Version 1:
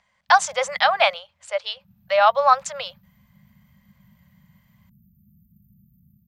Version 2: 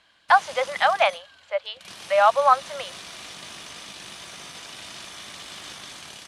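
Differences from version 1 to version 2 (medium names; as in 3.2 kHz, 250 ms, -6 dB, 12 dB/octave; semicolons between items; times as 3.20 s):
speech: add distance through air 250 m; background: remove brick-wall FIR band-stop 230–13000 Hz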